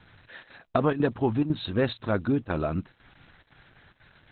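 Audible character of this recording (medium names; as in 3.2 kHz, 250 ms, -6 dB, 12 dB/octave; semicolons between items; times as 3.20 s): chopped level 2 Hz, depth 65%, duty 85%; a quantiser's noise floor 10-bit, dither none; Opus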